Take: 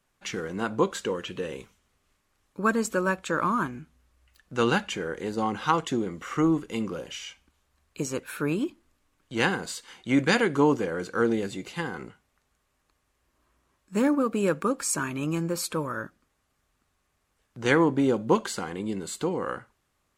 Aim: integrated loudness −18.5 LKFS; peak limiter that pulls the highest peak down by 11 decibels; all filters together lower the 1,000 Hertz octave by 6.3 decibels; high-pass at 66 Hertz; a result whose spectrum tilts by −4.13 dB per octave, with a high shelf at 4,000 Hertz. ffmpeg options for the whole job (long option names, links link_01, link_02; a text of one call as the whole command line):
ffmpeg -i in.wav -af "highpass=66,equalizer=frequency=1000:width_type=o:gain=-8.5,highshelf=frequency=4000:gain=7,volume=12dB,alimiter=limit=-6.5dB:level=0:latency=1" out.wav